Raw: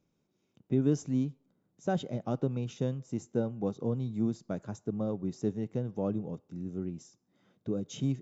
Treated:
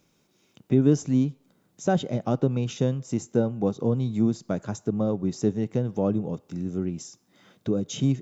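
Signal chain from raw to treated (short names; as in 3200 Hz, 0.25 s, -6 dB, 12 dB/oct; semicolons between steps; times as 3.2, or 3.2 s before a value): mismatched tape noise reduction encoder only; gain +7.5 dB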